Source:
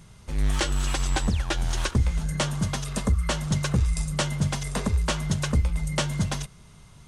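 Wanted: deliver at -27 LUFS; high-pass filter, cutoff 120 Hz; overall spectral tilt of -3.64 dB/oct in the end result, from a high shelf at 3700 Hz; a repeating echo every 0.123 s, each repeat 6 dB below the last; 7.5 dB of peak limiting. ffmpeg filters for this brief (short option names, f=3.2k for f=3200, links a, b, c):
-af "highpass=120,highshelf=f=3.7k:g=6,alimiter=limit=-17dB:level=0:latency=1,aecho=1:1:123|246|369|492|615|738:0.501|0.251|0.125|0.0626|0.0313|0.0157,volume=1.5dB"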